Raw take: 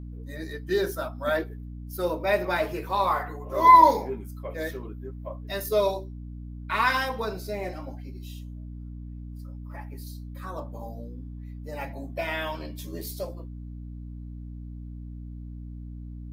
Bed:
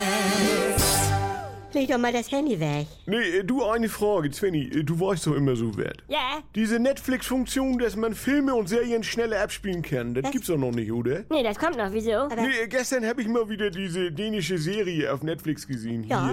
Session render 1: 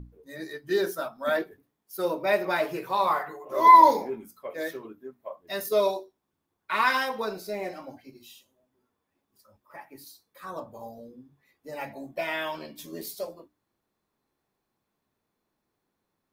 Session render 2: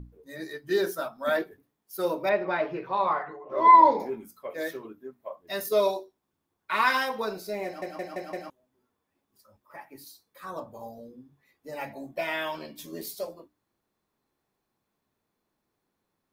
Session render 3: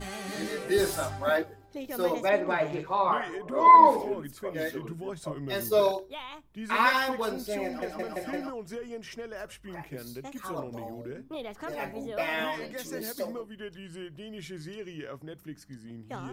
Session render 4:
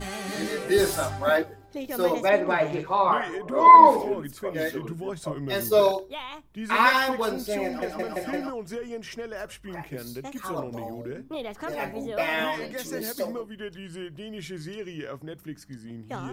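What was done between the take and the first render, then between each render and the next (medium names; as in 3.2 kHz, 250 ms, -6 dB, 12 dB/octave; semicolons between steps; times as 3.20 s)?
hum notches 60/120/180/240/300 Hz
2.29–4.00 s: distance through air 290 m; 7.65 s: stutter in place 0.17 s, 5 plays
add bed -14.5 dB
trim +4 dB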